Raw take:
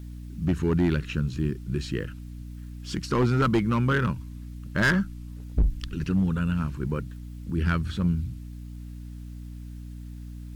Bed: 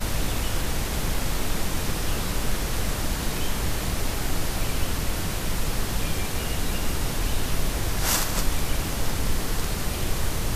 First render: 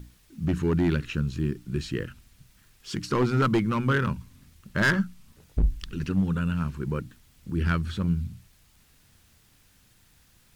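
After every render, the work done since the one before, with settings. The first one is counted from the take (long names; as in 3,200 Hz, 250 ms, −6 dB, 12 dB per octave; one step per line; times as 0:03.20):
mains-hum notches 60/120/180/240/300 Hz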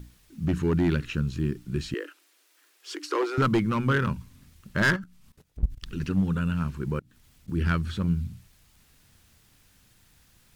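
0:01.94–0:03.38: Chebyshev high-pass filter 290 Hz, order 8
0:04.96–0:05.86: output level in coarse steps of 18 dB
0:06.99–0:07.48: downward compressor 10 to 1, threshold −53 dBFS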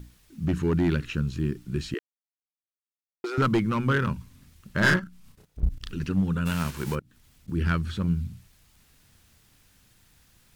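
0:01.99–0:03.24: silence
0:04.80–0:05.92: double-tracking delay 33 ms −2 dB
0:06.45–0:06.94: spectral envelope flattened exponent 0.6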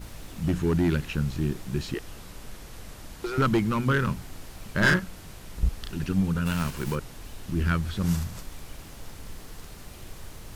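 mix in bed −16.5 dB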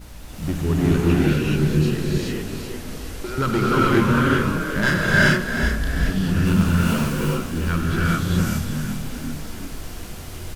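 echo with shifted repeats 384 ms, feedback 49%, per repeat +35 Hz, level −8.5 dB
reverb whose tail is shaped and stops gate 450 ms rising, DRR −6.5 dB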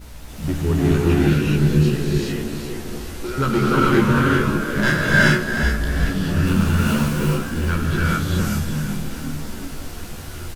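double-tracking delay 14 ms −5.5 dB
echo through a band-pass that steps 571 ms, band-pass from 280 Hz, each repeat 0.7 octaves, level −11.5 dB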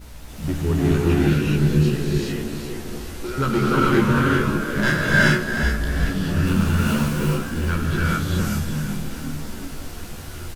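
level −1.5 dB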